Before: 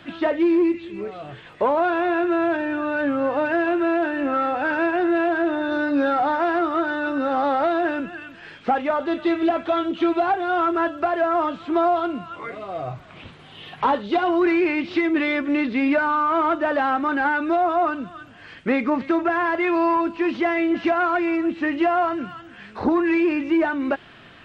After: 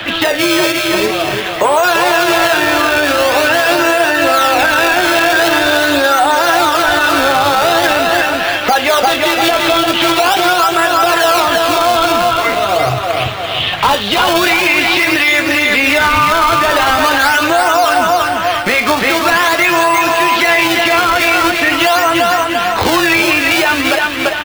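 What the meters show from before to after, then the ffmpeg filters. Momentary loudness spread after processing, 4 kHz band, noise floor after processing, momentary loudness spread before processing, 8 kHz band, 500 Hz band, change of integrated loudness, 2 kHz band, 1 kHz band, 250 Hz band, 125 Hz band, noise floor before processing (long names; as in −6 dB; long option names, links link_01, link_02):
3 LU, +25.5 dB, −18 dBFS, 12 LU, can't be measured, +9.0 dB, +11.0 dB, +15.5 dB, +11.5 dB, +3.0 dB, +16.5 dB, −45 dBFS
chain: -filter_complex "[0:a]asplit=2[link_01][link_02];[link_02]acrusher=samples=26:mix=1:aa=0.000001:lfo=1:lforange=41.6:lforate=0.44,volume=-10dB[link_03];[link_01][link_03]amix=inputs=2:normalize=0,acrossover=split=480 3700:gain=0.2 1 0.1[link_04][link_05][link_06];[link_04][link_05][link_06]amix=inputs=3:normalize=0,acrossover=split=390|750[link_07][link_08][link_09];[link_07]acompressor=threshold=-39dB:ratio=6[link_10];[link_10][link_08][link_09]amix=inputs=3:normalize=0,crystalizer=i=6.5:c=0,aecho=1:1:342|684|1026|1368|1710:0.501|0.216|0.0927|0.0398|0.0171,acrossover=split=140|3000[link_11][link_12][link_13];[link_12]acompressor=threshold=-56dB:ratio=1.5[link_14];[link_11][link_14][link_13]amix=inputs=3:normalize=0,tremolo=f=200:d=0.4,flanger=delay=9:depth=2.1:regen=-50:speed=0.91:shape=sinusoidal,tiltshelf=frequency=820:gain=4.5,alimiter=level_in=31.5dB:limit=-1dB:release=50:level=0:latency=1,volume=-1dB"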